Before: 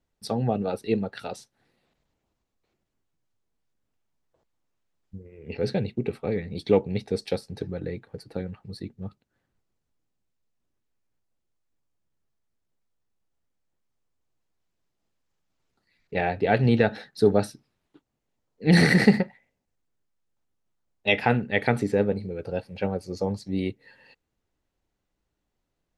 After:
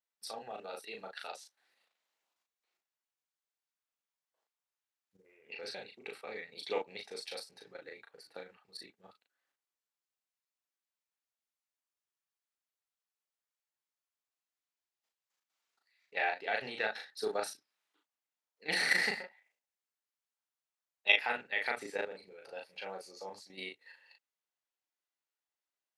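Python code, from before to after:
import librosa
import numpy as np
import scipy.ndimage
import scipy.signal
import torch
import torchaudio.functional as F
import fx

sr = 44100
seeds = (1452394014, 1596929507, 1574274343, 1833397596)

y = scipy.signal.sosfilt(scipy.signal.bessel(2, 1200.0, 'highpass', norm='mag', fs=sr, output='sos'), x)
y = fx.level_steps(y, sr, step_db=11)
y = fx.doubler(y, sr, ms=37.0, db=-3.0)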